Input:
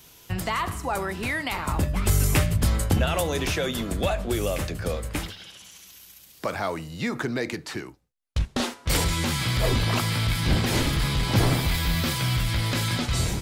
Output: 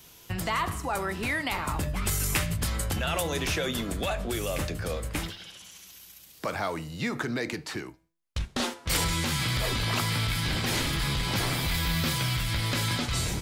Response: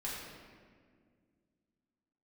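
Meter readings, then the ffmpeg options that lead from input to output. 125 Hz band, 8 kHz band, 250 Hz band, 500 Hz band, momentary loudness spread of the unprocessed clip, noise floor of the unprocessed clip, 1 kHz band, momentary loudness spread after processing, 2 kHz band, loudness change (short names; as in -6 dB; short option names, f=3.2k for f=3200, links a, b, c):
-5.5 dB, -1.0 dB, -4.5 dB, -4.5 dB, 11 LU, -52 dBFS, -2.5 dB, 11 LU, -1.0 dB, -3.5 dB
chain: -filter_complex "[0:a]acrossover=split=1000[a][b];[a]alimiter=limit=-23dB:level=0:latency=1[c];[c][b]amix=inputs=2:normalize=0,flanger=delay=5.5:depth=1.6:regen=90:speed=0.35:shape=triangular,volume=3.5dB"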